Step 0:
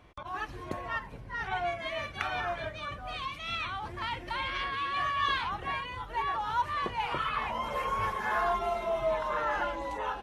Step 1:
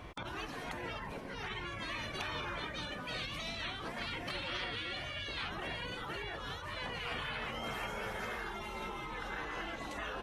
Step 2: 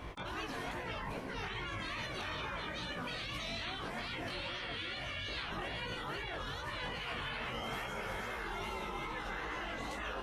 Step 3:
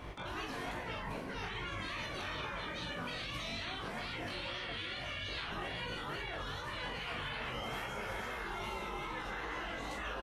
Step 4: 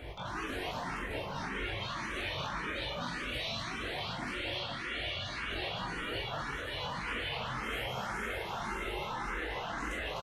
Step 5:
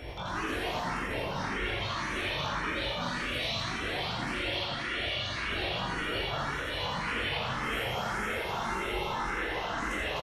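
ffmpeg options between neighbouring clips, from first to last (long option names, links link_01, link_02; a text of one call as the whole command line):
ffmpeg -i in.wav -af "acompressor=threshold=-39dB:ratio=6,afftfilt=real='re*lt(hypot(re,im),0.0224)':imag='im*lt(hypot(re,im),0.0224)':win_size=1024:overlap=0.75,volume=9dB" out.wav
ffmpeg -i in.wav -af "alimiter=level_in=10.5dB:limit=-24dB:level=0:latency=1:release=51,volume=-10.5dB,flanger=delay=15.5:depth=6.9:speed=2.4,volume=6dB" out.wav
ffmpeg -i in.wav -filter_complex "[0:a]asplit=2[link_01][link_02];[link_02]adelay=41,volume=-7dB[link_03];[link_01][link_03]amix=inputs=2:normalize=0,volume=-1dB" out.wav
ffmpeg -i in.wav -filter_complex "[0:a]aecho=1:1:55.39|250.7:0.251|0.708,asplit=2[link_01][link_02];[link_02]afreqshift=1.8[link_03];[link_01][link_03]amix=inputs=2:normalize=1,volume=4.5dB" out.wav
ffmpeg -i in.wav -af "aecho=1:1:83:0.668,aeval=exprs='val(0)+0.000631*sin(2*PI*5500*n/s)':channel_layout=same,volume=3dB" out.wav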